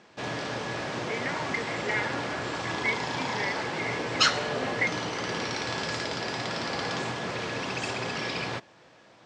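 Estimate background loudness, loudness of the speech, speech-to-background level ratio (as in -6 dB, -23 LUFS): -30.5 LUFS, -34.0 LUFS, -3.5 dB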